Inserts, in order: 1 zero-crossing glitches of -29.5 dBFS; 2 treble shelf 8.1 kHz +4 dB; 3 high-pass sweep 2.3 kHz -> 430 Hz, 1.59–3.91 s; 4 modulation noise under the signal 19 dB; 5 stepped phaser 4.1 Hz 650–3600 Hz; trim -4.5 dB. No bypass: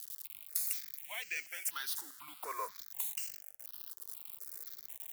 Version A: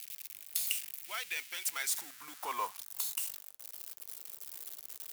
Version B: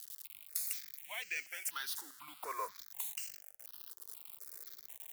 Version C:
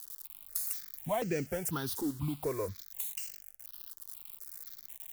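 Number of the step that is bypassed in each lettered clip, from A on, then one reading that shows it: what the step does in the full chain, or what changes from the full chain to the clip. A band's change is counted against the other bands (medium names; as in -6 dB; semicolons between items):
5, 500 Hz band -3.0 dB; 2, 8 kHz band -2.0 dB; 3, 250 Hz band +28.5 dB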